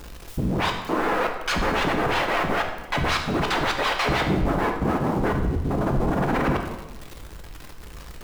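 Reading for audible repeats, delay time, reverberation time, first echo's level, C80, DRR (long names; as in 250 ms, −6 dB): no echo audible, no echo audible, 1.1 s, no echo audible, 8.5 dB, 2.5 dB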